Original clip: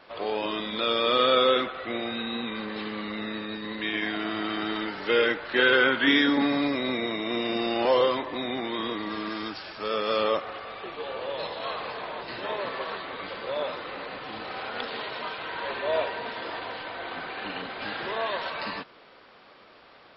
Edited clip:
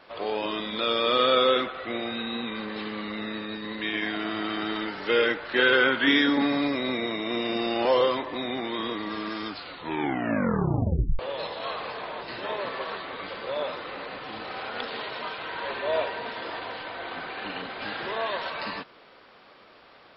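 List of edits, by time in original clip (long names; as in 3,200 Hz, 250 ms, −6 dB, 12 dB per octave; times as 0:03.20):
0:09.45: tape stop 1.74 s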